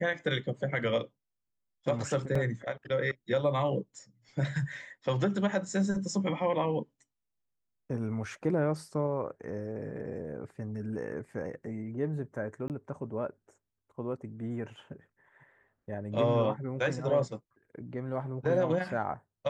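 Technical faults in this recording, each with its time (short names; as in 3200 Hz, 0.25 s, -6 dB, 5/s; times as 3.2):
2.35 gap 4 ms
12.68–12.7 gap 18 ms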